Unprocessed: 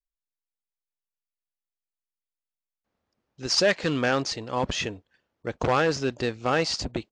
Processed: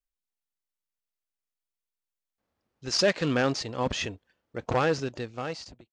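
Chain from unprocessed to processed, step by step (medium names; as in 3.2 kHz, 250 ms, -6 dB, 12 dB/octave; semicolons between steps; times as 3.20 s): fade out at the end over 1.54 s; tempo 1.2×; harmonic-percussive split harmonic +5 dB; trim -3.5 dB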